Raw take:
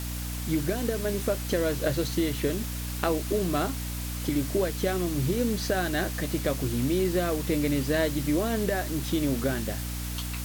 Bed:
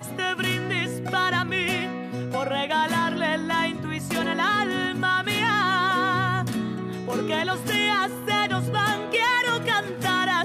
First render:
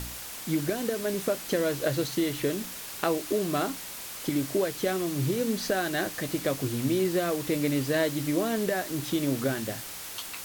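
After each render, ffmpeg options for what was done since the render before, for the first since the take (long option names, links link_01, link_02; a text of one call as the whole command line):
ffmpeg -i in.wav -af "bandreject=frequency=60:width_type=h:width=4,bandreject=frequency=120:width_type=h:width=4,bandreject=frequency=180:width_type=h:width=4,bandreject=frequency=240:width_type=h:width=4,bandreject=frequency=300:width_type=h:width=4" out.wav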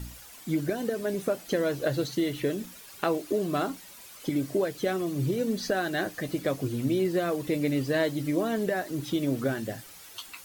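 ffmpeg -i in.wav -af "afftdn=noise_reduction=11:noise_floor=-40" out.wav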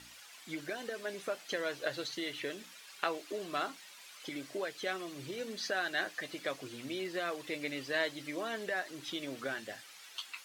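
ffmpeg -i in.wav -af "bandpass=frequency=2600:width_type=q:width=0.63:csg=0" out.wav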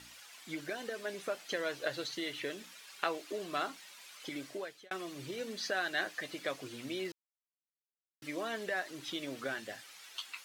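ffmpeg -i in.wav -filter_complex "[0:a]asplit=4[link_01][link_02][link_03][link_04];[link_01]atrim=end=4.91,asetpts=PTS-STARTPTS,afade=type=out:start_time=4.45:duration=0.46[link_05];[link_02]atrim=start=4.91:end=7.12,asetpts=PTS-STARTPTS,afade=type=in:duration=0.004:curve=hsin,afade=type=out:start_time=2.206:duration=0.004:curve=hsin[link_06];[link_03]atrim=start=7.12:end=8.22,asetpts=PTS-STARTPTS,volume=0[link_07];[link_04]atrim=start=8.22,asetpts=PTS-STARTPTS,afade=type=in:duration=0.004:curve=hsin[link_08];[link_05][link_06][link_07][link_08]concat=n=4:v=0:a=1" out.wav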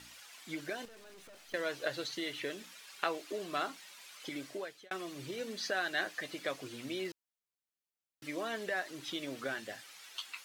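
ffmpeg -i in.wav -filter_complex "[0:a]asettb=1/sr,asplit=3[link_01][link_02][link_03];[link_01]atrim=end=0.854[link_04];[link_02]atrim=start=0.85:end=1.54,asetpts=PTS-STARTPTS,afade=type=in:duration=0.004:curve=qsin,afade=type=out:start_time=0.686:duration=0.004:curve=qsin,aeval=exprs='(tanh(501*val(0)+0.5)-tanh(0.5))/501':channel_layout=same[link_05];[link_03]atrim=start=1.536[link_06];[link_04][link_05]acrossfade=duration=0.004:curve1=hsin:curve2=qsin[link_07];[link_07][link_06]acrossfade=duration=0.004:curve1=qsin:curve2=hsin" out.wav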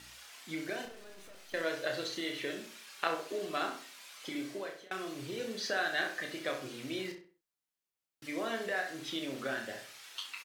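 ffmpeg -i in.wav -filter_complex "[0:a]asplit=2[link_01][link_02];[link_02]adelay=31,volume=-6dB[link_03];[link_01][link_03]amix=inputs=2:normalize=0,asplit=2[link_04][link_05];[link_05]adelay=65,lowpass=frequency=2900:poles=1,volume=-7dB,asplit=2[link_06][link_07];[link_07]adelay=65,lowpass=frequency=2900:poles=1,volume=0.37,asplit=2[link_08][link_09];[link_09]adelay=65,lowpass=frequency=2900:poles=1,volume=0.37,asplit=2[link_10][link_11];[link_11]adelay=65,lowpass=frequency=2900:poles=1,volume=0.37[link_12];[link_04][link_06][link_08][link_10][link_12]amix=inputs=5:normalize=0" out.wav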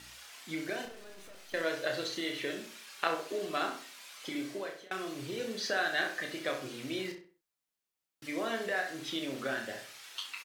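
ffmpeg -i in.wav -af "volume=1.5dB" out.wav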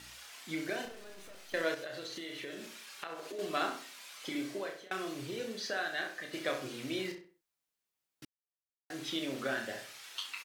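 ffmpeg -i in.wav -filter_complex "[0:a]asettb=1/sr,asplit=3[link_01][link_02][link_03];[link_01]atrim=end=1.744[link_04];[link_02]atrim=start=1.74:end=3.39,asetpts=PTS-STARTPTS,afade=type=in:duration=0.004:curve=qsin,afade=type=out:start_time=1.646:duration=0.004:curve=qsin,acompressor=threshold=-40dB:ratio=4:attack=3.2:release=140:knee=1:detection=peak[link_05];[link_03]atrim=start=3.386[link_06];[link_04][link_05]acrossfade=duration=0.004:curve1=hsin:curve2=qsin[link_07];[link_07][link_06]acrossfade=duration=0.004:curve1=qsin:curve2=hsin,asplit=4[link_08][link_09][link_10][link_11];[link_08]atrim=end=6.33,asetpts=PTS-STARTPTS,afade=type=out:start_time=5.11:duration=1.22:curve=qua:silence=0.501187[link_12];[link_09]atrim=start=6.33:end=8.25,asetpts=PTS-STARTPTS,afade=type=in:duration=0.004:curve=hsin:silence=0.501187,afade=type=out:start_time=1.916:duration=0.004:curve=hsin[link_13];[link_10]atrim=start=8.25:end=8.9,asetpts=PTS-STARTPTS,volume=0[link_14];[link_11]atrim=start=8.9,asetpts=PTS-STARTPTS,afade=type=in:duration=0.004:curve=hsin[link_15];[link_12][link_13][link_14][link_15]concat=n=4:v=0:a=1" out.wav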